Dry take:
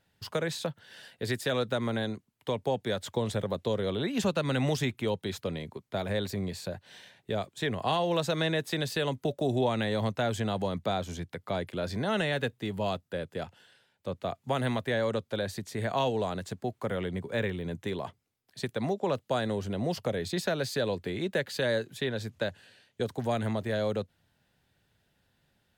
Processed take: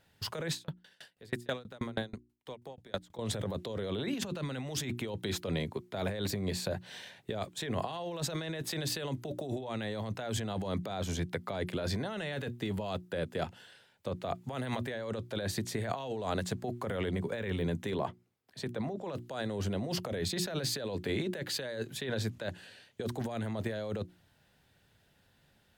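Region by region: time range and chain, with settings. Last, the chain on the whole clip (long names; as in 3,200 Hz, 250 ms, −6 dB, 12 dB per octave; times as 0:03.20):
0:00.52–0:03.19: transient designer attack −10 dB, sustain −4 dB + tremolo with a ramp in dB decaying 6.2 Hz, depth 33 dB
0:17.94–0:19.01: high-pass filter 83 Hz + high-shelf EQ 2,700 Hz −8.5 dB
whole clip: mains-hum notches 60/120/180/240/300/360 Hz; compressor whose output falls as the input rises −35 dBFS, ratio −1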